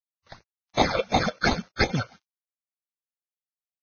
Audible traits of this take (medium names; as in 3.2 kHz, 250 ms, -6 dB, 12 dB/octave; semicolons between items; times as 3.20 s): aliases and images of a low sample rate 2.9 kHz, jitter 0%; phasing stages 8, 2.8 Hz, lowest notch 220–1600 Hz; a quantiser's noise floor 10-bit, dither none; Vorbis